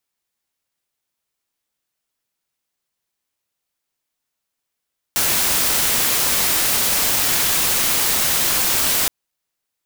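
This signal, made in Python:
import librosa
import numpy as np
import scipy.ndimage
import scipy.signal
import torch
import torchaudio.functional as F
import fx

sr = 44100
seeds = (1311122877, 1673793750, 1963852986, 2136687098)

y = fx.noise_colour(sr, seeds[0], length_s=3.92, colour='white', level_db=-18.0)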